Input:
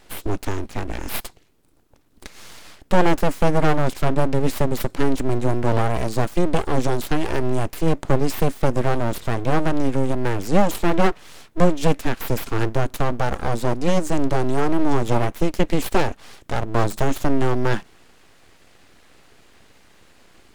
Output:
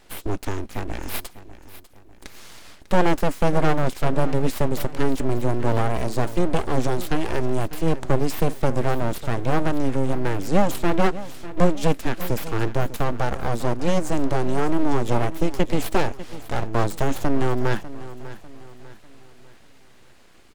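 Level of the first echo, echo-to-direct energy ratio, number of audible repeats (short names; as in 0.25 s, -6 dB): -15.5 dB, -14.5 dB, 3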